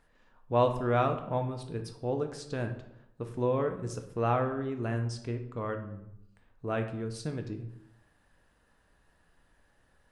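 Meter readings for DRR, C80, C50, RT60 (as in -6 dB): 5.0 dB, 12.0 dB, 9.5 dB, 0.80 s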